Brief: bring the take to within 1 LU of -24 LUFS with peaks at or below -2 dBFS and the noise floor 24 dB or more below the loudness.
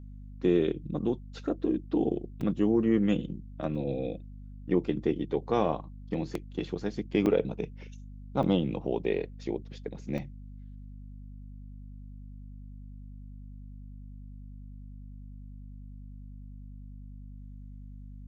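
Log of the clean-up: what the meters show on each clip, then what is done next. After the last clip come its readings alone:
dropouts 6; longest dropout 3.1 ms; hum 50 Hz; highest harmonic 250 Hz; hum level -42 dBFS; loudness -30.5 LUFS; peak level -11.5 dBFS; loudness target -24.0 LUFS
-> interpolate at 2.41/3.75/6.35/7.26/8.43/10.18 s, 3.1 ms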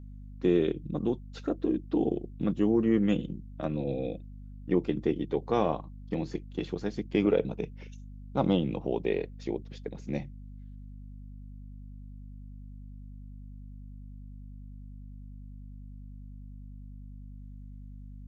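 dropouts 0; hum 50 Hz; highest harmonic 250 Hz; hum level -42 dBFS
-> hum notches 50/100/150/200/250 Hz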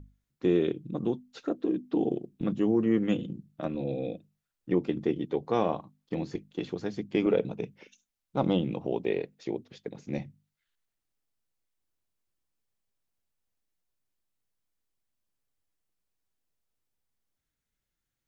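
hum not found; loudness -31.0 LUFS; peak level -11.5 dBFS; loudness target -24.0 LUFS
-> trim +7 dB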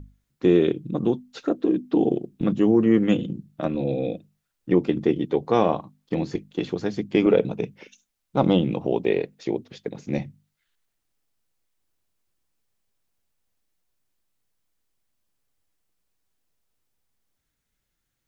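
loudness -24.0 LUFS; peak level -4.5 dBFS; noise floor -78 dBFS

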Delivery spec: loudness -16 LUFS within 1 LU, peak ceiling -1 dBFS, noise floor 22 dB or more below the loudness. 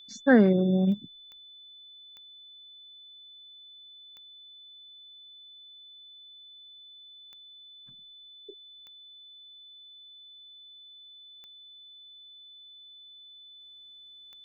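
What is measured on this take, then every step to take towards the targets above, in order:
clicks found 8; steady tone 3.5 kHz; tone level -48 dBFS; loudness -22.5 LUFS; peak level -8.0 dBFS; loudness target -16.0 LUFS
-> de-click; band-stop 3.5 kHz, Q 30; trim +6.5 dB

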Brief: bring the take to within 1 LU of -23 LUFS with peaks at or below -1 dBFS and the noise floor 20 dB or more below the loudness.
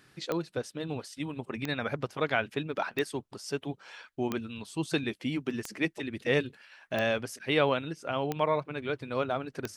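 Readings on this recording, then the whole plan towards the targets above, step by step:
clicks found 8; loudness -32.5 LUFS; peak level -11.5 dBFS; loudness target -23.0 LUFS
-> de-click; trim +9.5 dB

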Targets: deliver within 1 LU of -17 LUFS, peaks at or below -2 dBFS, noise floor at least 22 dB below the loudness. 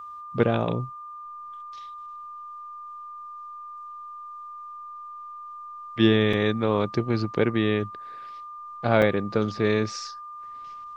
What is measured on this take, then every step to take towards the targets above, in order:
dropouts 2; longest dropout 3.9 ms; steady tone 1.2 kHz; tone level -37 dBFS; loudness -24.5 LUFS; peak level -4.5 dBFS; loudness target -17.0 LUFS
-> interpolate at 6.33/9.02 s, 3.9 ms; band-stop 1.2 kHz, Q 30; trim +7.5 dB; peak limiter -2 dBFS

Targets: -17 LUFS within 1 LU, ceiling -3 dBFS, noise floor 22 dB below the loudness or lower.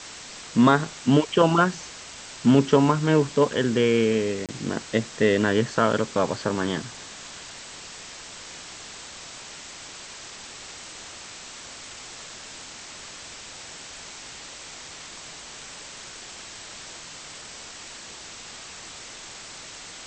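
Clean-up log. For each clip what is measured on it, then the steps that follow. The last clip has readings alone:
dropouts 1; longest dropout 27 ms; noise floor -42 dBFS; noise floor target -44 dBFS; loudness -22.0 LUFS; peak level -4.0 dBFS; loudness target -17.0 LUFS
-> interpolate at 4.46 s, 27 ms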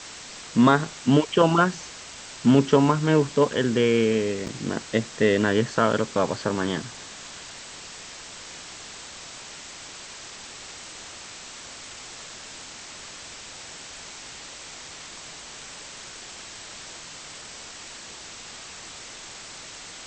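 dropouts 0; noise floor -42 dBFS; noise floor target -44 dBFS
-> noise reduction 6 dB, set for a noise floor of -42 dBFS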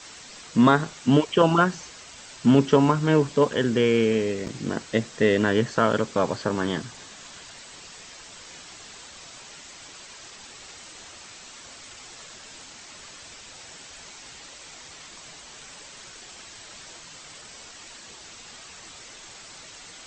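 noise floor -45 dBFS; loudness -22.0 LUFS; peak level -4.0 dBFS; loudness target -17.0 LUFS
-> trim +5 dB; peak limiter -3 dBFS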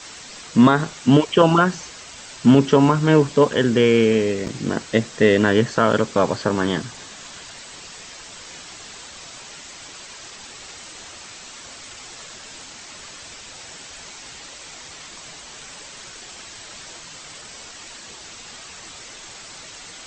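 loudness -17.5 LUFS; peak level -3.0 dBFS; noise floor -40 dBFS

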